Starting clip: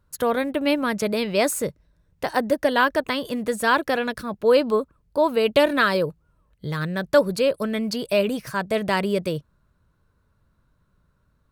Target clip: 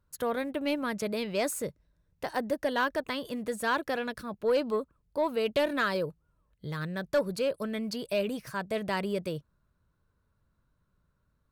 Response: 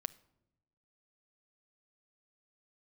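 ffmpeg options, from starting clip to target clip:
-af "asoftclip=type=tanh:threshold=0.335,volume=0.398"

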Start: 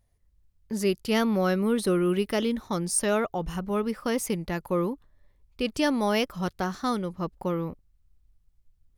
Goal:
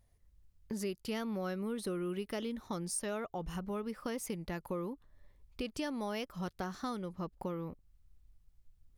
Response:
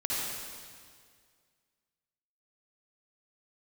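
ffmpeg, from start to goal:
-af "acompressor=threshold=0.0112:ratio=3"

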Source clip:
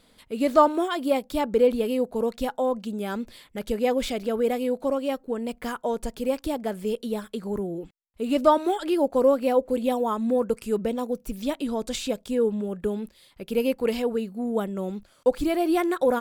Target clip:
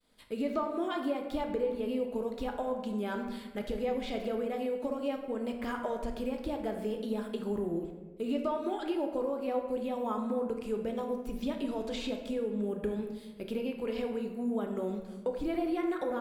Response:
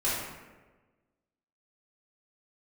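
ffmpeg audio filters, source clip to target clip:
-filter_complex "[0:a]acrossover=split=4300[s0][s1];[s1]acompressor=threshold=0.00224:ratio=4:attack=1:release=60[s2];[s0][s2]amix=inputs=2:normalize=0,agate=range=0.0224:threshold=0.00251:ratio=3:detection=peak,acompressor=threshold=0.0398:ratio=6,asplit=2[s3][s4];[1:a]atrim=start_sample=2205[s5];[s4][s5]afir=irnorm=-1:irlink=0,volume=0.299[s6];[s3][s6]amix=inputs=2:normalize=0,volume=0.531"

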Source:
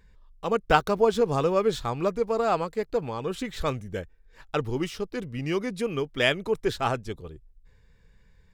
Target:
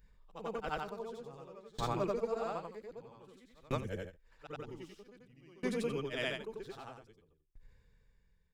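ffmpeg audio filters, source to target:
-af "afftfilt=real='re':imag='-im':win_size=8192:overlap=0.75,aeval=exprs='val(0)*pow(10,-29*if(lt(mod(0.52*n/s,1),2*abs(0.52)/1000),1-mod(0.52*n/s,1)/(2*abs(0.52)/1000),(mod(0.52*n/s,1)-2*abs(0.52)/1000)/(1-2*abs(0.52)/1000))/20)':c=same,volume=1.12"

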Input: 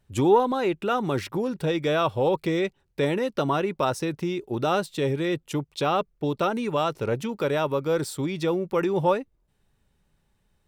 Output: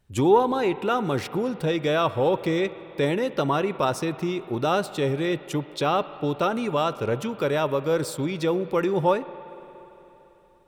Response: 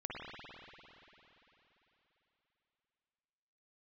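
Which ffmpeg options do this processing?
-filter_complex "[0:a]asplit=2[s0][s1];[1:a]atrim=start_sample=2205,lowshelf=f=270:g=-7.5[s2];[s1][s2]afir=irnorm=-1:irlink=0,volume=0.224[s3];[s0][s3]amix=inputs=2:normalize=0"

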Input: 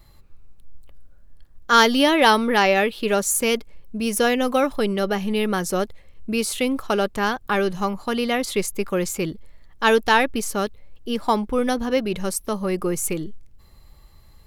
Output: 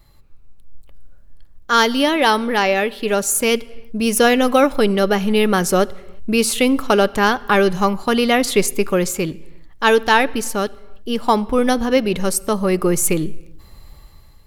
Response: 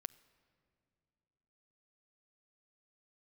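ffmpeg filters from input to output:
-filter_complex "[0:a]dynaudnorm=f=580:g=3:m=2.99,asplit=2[s0][s1];[1:a]atrim=start_sample=2205,afade=t=out:st=0.42:d=0.01,atrim=end_sample=18963[s2];[s1][s2]afir=irnorm=-1:irlink=0,volume=6.68[s3];[s0][s3]amix=inputs=2:normalize=0,volume=0.188"

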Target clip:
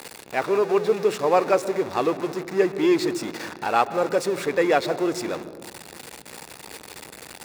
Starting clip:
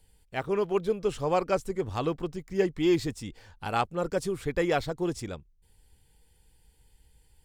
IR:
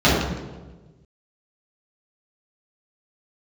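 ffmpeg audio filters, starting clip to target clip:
-filter_complex "[0:a]aeval=exprs='val(0)+0.5*0.0266*sgn(val(0))':c=same,highpass=340,highshelf=f=6000:g=-10.5,bandreject=f=3100:w=7.2,asplit=2[s0][s1];[1:a]atrim=start_sample=2205,adelay=117[s2];[s1][s2]afir=irnorm=-1:irlink=0,volume=0.0106[s3];[s0][s3]amix=inputs=2:normalize=0,volume=2.11"

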